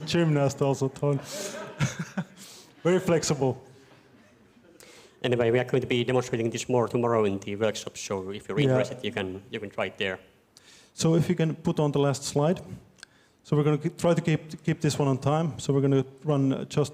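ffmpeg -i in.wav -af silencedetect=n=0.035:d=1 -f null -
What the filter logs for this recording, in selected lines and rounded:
silence_start: 3.53
silence_end: 4.80 | silence_duration: 1.28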